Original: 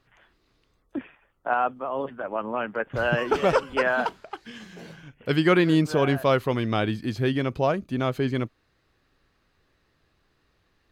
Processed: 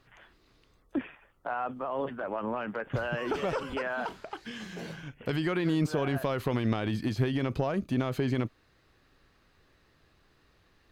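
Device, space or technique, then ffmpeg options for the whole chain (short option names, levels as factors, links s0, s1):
de-esser from a sidechain: -filter_complex "[0:a]asplit=2[s0][s1];[s1]highpass=f=4600:p=1,apad=whole_len=481170[s2];[s0][s2]sidechaincompress=threshold=0.00316:ratio=3:attack=3.1:release=26,volume=1.41"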